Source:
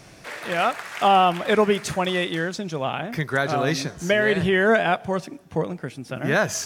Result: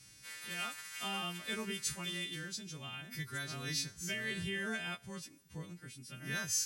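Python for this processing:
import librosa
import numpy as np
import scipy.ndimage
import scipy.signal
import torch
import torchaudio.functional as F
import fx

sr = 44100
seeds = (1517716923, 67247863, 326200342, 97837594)

y = fx.freq_snap(x, sr, grid_st=2)
y = fx.tone_stack(y, sr, knobs='6-0-2')
y = y * 10.0 ** (1.0 / 20.0)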